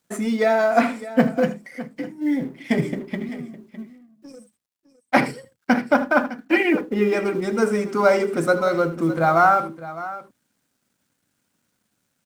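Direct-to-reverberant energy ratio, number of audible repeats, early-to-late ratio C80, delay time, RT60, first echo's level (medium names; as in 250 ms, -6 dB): no reverb, 2, no reverb, 78 ms, no reverb, -15.0 dB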